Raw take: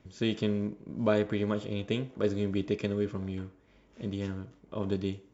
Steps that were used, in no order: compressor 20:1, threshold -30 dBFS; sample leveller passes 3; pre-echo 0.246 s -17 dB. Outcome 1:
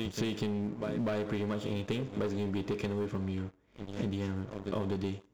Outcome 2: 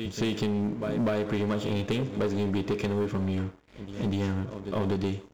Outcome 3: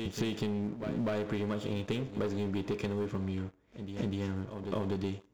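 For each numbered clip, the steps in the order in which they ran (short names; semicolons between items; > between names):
pre-echo > sample leveller > compressor; pre-echo > compressor > sample leveller; sample leveller > pre-echo > compressor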